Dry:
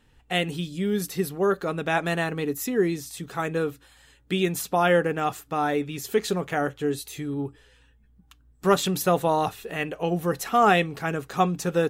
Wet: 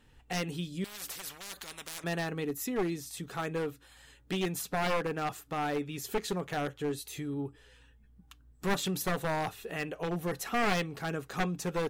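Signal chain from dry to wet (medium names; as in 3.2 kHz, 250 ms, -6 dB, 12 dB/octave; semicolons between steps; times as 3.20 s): one-sided wavefolder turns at -20 dBFS; in parallel at +2.5 dB: compression, threshold -40 dBFS, peak gain reduction 21.5 dB; 0.84–2.04 s: on the sum: spectrum-flattening compressor 10:1; trim -8.5 dB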